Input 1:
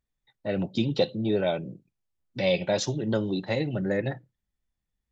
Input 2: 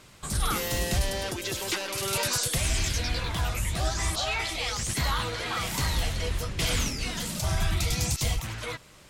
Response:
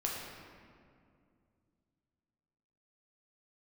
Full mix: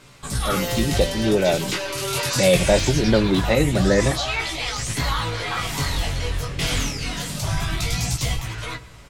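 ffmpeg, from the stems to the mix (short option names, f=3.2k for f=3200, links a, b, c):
-filter_complex "[0:a]deesser=0.9,dynaudnorm=f=820:g=3:m=8dB,volume=-5dB[a];[1:a]highshelf=f=8.2k:g=-4.5,aecho=1:1:7.1:0.36,flanger=delay=15.5:depth=7.3:speed=0.23,volume=-0.5dB,asplit=2[b][c];[c]volume=-16.5dB[d];[2:a]atrim=start_sample=2205[e];[d][e]afir=irnorm=-1:irlink=0[f];[a][b][f]amix=inputs=3:normalize=0,acontrast=61"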